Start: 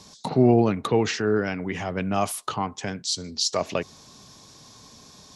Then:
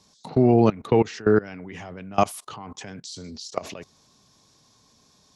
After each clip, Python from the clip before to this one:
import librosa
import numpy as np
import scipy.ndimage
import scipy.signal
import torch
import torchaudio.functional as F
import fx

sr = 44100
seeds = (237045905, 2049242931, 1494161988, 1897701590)

y = fx.level_steps(x, sr, step_db=22)
y = F.gain(torch.from_numpy(y), 6.0).numpy()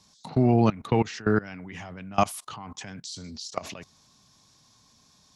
y = fx.peak_eq(x, sr, hz=430.0, db=-7.5, octaves=1.1)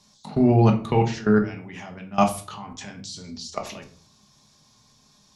y = fx.room_shoebox(x, sr, seeds[0], volume_m3=310.0, walls='furnished', distance_m=1.3)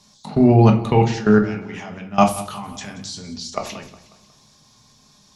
y = fx.echo_feedback(x, sr, ms=181, feedback_pct=46, wet_db=-16.5)
y = F.gain(torch.from_numpy(y), 4.5).numpy()